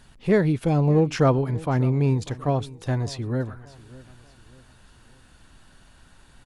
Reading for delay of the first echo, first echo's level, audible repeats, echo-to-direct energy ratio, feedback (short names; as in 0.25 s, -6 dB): 0.592 s, -20.0 dB, 2, -19.5 dB, 40%